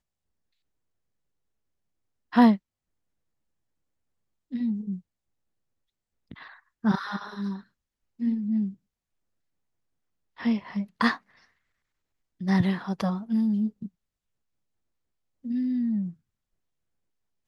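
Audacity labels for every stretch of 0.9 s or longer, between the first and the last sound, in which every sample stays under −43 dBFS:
2.570000	4.520000	silence
4.990000	6.310000	silence
8.740000	10.380000	silence
11.180000	12.410000	silence
13.880000	15.450000	silence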